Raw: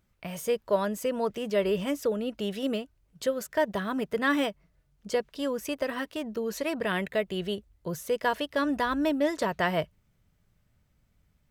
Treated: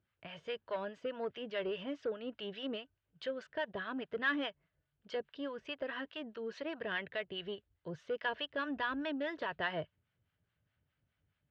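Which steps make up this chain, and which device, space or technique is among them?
guitar amplifier with harmonic tremolo (harmonic tremolo 4.8 Hz, depth 70%, crossover 720 Hz; saturation -21.5 dBFS, distortion -19 dB; cabinet simulation 91–4000 Hz, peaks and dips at 96 Hz +4 dB, 200 Hz -7 dB, 1.6 kHz +7 dB, 3 kHz +6 dB); trim -6.5 dB

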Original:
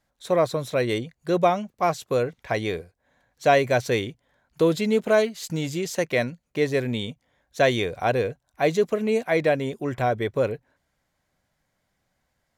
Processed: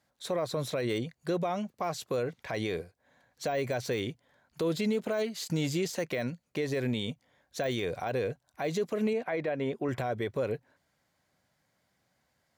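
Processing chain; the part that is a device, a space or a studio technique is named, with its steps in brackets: broadcast voice chain (high-pass 89 Hz 12 dB/octave; de-esser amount 75%; compression 3:1, threshold -23 dBFS, peak gain reduction 7.5 dB; peaking EQ 4.6 kHz +3 dB 0.29 oct; peak limiter -22 dBFS, peak gain reduction 10 dB); 9.13–9.89 s: tone controls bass -4 dB, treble -15 dB

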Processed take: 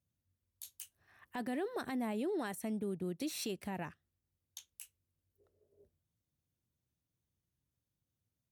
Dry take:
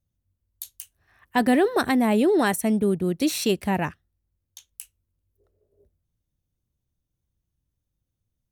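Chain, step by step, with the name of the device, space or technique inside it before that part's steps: podcast mastering chain (high-pass 95 Hz 12 dB/octave; de-esser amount 45%; compression 4:1, threshold -32 dBFS, peak gain reduction 14 dB; peak limiter -25 dBFS, peak gain reduction 7.5 dB; trim -4 dB; MP3 96 kbps 44.1 kHz)

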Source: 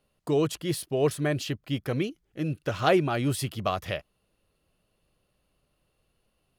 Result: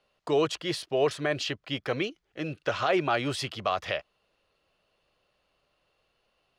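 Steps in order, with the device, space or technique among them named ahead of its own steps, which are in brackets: DJ mixer with the lows and highs turned down (three-band isolator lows -13 dB, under 440 Hz, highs -23 dB, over 6.5 kHz; peak limiter -20 dBFS, peak gain reduction 11.5 dB); trim +5 dB

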